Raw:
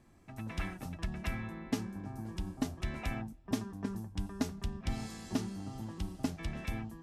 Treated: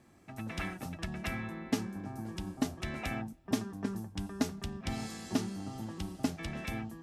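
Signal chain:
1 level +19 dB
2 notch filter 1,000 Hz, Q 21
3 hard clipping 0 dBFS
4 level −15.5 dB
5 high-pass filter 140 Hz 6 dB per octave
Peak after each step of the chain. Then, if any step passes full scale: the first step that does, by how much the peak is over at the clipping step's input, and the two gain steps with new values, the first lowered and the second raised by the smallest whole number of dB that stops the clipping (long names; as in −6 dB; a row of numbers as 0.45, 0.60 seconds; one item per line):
−2.5, −2.0, −2.0, −17.5, −17.0 dBFS
no step passes full scale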